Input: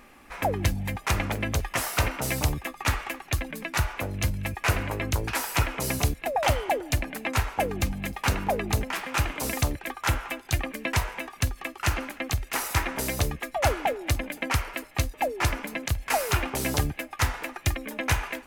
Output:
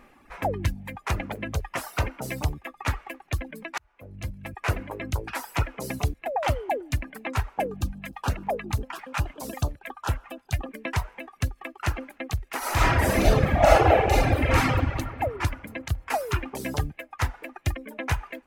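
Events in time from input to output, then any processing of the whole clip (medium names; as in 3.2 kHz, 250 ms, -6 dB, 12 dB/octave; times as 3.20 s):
3.78–4.74 s: fade in
7.67–10.69 s: LFO notch square 7.2 Hz 360–2100 Hz
12.58–14.57 s: reverb throw, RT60 2.9 s, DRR -12 dB
whole clip: reverb removal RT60 1.6 s; treble shelf 2.6 kHz -8.5 dB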